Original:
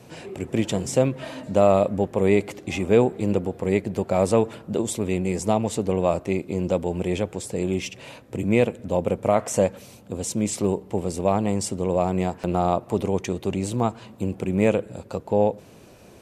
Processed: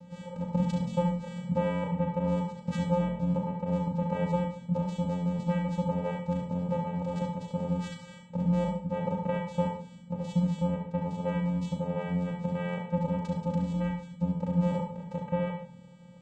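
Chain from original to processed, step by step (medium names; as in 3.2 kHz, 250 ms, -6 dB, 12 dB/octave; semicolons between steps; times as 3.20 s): steep low-pass 5.3 kHz; high-order bell 1.5 kHz -15 dB 1.1 oct; hum notches 60/120/180 Hz; compression 1.5:1, threshold -29 dBFS, peak gain reduction 6.5 dB; vocoder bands 4, square 176 Hz; flutter echo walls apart 6.3 m, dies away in 0.36 s; on a send at -4 dB: reverberation RT60 0.30 s, pre-delay 58 ms; on the sum: trim +1 dB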